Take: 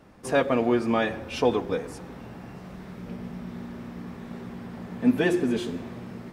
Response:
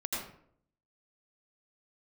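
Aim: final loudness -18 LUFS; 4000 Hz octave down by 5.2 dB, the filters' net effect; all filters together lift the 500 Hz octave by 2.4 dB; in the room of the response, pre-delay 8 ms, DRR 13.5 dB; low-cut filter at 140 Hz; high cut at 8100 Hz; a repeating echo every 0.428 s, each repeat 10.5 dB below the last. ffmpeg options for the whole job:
-filter_complex "[0:a]highpass=140,lowpass=8.1k,equalizer=f=500:t=o:g=3,equalizer=f=4k:t=o:g=-7,aecho=1:1:428|856|1284:0.299|0.0896|0.0269,asplit=2[a][b];[1:a]atrim=start_sample=2205,adelay=8[c];[b][c]afir=irnorm=-1:irlink=0,volume=-17.5dB[d];[a][d]amix=inputs=2:normalize=0,volume=6dB"

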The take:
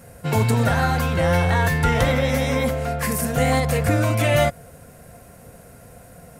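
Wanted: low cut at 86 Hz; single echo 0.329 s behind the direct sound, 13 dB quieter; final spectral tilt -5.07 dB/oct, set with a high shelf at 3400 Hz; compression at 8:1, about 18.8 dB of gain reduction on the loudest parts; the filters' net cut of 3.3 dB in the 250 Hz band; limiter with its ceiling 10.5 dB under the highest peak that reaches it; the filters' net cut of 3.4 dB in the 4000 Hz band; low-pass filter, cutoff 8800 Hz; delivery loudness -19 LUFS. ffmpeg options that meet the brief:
-af "highpass=86,lowpass=8.8k,equalizer=f=250:t=o:g=-4.5,highshelf=f=3.4k:g=4.5,equalizer=f=4k:t=o:g=-7.5,acompressor=threshold=-36dB:ratio=8,alimiter=level_in=12dB:limit=-24dB:level=0:latency=1,volume=-12dB,aecho=1:1:329:0.224,volume=26dB"

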